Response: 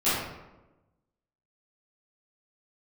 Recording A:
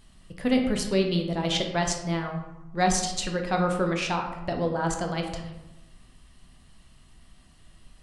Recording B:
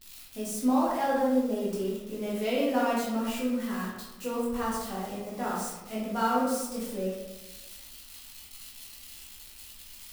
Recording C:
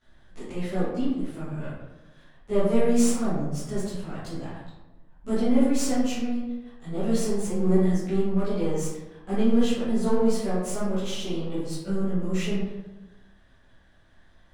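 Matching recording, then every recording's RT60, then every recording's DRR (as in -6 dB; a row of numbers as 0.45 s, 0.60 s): C; 1.1 s, 1.1 s, 1.1 s; 2.5 dB, -6.5 dB, -16.0 dB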